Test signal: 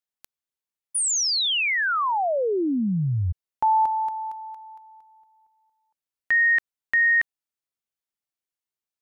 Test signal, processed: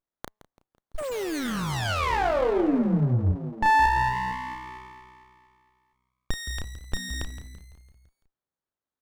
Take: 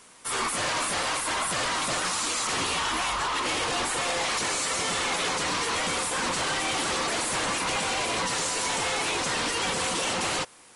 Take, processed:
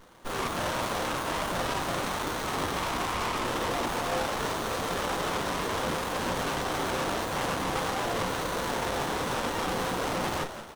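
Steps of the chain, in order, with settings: doubling 33 ms -6 dB; de-hum 106.5 Hz, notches 11; on a send: frequency-shifting echo 168 ms, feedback 57%, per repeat +63 Hz, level -12 dB; on the sum: sliding maximum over 17 samples

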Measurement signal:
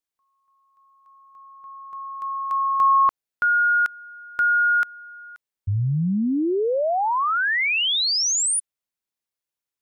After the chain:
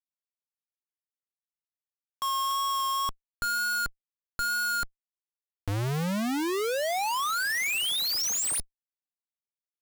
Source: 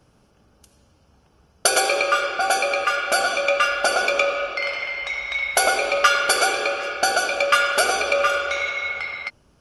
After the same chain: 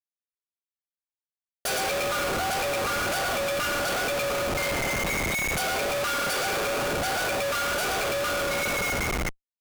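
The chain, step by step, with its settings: Schmitt trigger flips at -28.5 dBFS; wow and flutter 2.1 Hz 16 cents; trim -4.5 dB

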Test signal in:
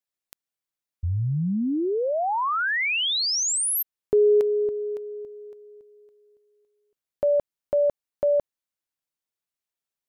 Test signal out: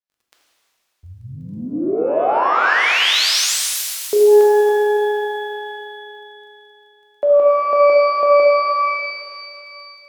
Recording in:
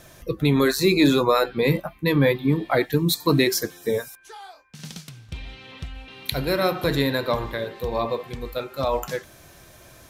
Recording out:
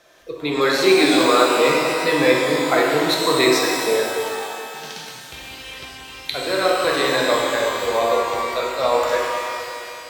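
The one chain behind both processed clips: three-band isolator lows -19 dB, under 320 Hz, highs -13 dB, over 6.1 kHz; level rider gain up to 8.5 dB; crackle 12 per s -44 dBFS; pitch-shifted reverb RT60 2.4 s, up +12 st, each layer -8 dB, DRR -2 dB; trim -4 dB

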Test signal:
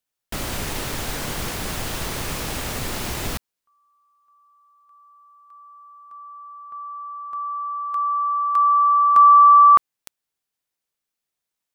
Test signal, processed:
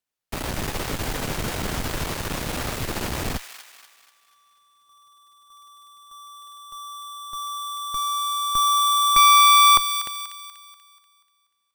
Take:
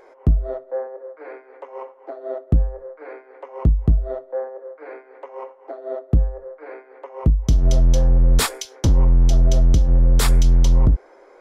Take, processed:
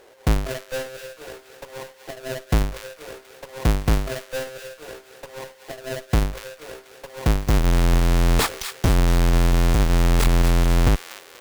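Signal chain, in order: square wave that keeps the level; Chebyshev shaper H 6 -10 dB, 8 -9 dB, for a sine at -6.5 dBFS; feedback echo behind a high-pass 242 ms, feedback 44%, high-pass 1.5 kHz, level -8 dB; trim -6 dB

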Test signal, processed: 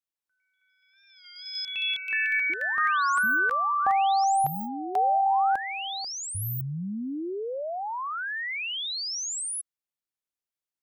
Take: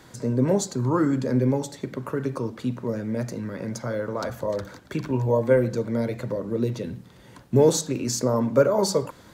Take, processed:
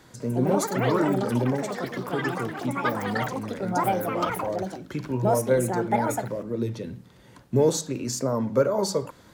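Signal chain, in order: ever faster or slower copies 203 ms, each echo +7 st, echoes 3; warped record 33 1/3 rpm, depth 100 cents; trim -3 dB

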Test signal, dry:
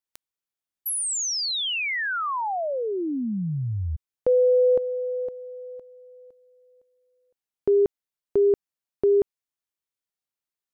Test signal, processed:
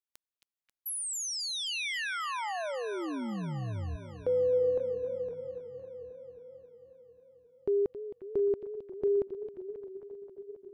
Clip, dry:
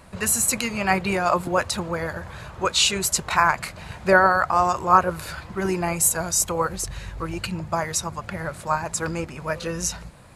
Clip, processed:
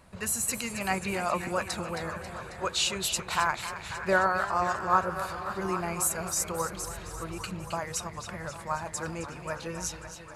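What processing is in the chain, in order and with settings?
repeats whose band climbs or falls 266 ms, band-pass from 3.3 kHz, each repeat -0.7 oct, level -6 dB; modulated delay 269 ms, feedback 73%, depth 106 cents, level -13 dB; trim -8.5 dB

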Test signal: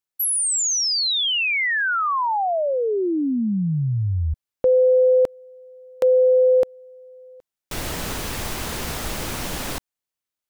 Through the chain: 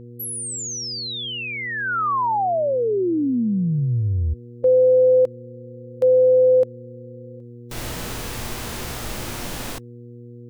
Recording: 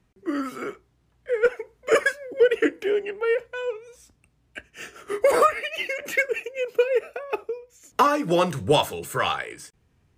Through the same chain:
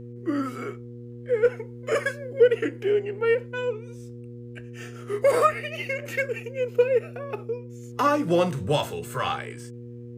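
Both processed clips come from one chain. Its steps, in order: harmonic-percussive split harmonic +9 dB; mains buzz 120 Hz, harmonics 4, -32 dBFS -4 dB/octave; trim -8 dB

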